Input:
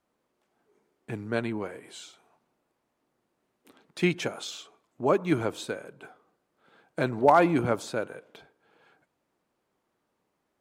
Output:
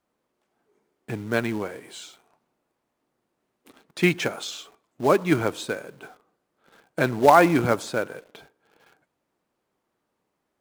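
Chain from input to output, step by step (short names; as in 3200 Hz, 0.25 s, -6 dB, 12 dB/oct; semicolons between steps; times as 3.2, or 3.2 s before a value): dynamic EQ 1800 Hz, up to +4 dB, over -41 dBFS, Q 1.5; in parallel at -5 dB: companded quantiser 4-bit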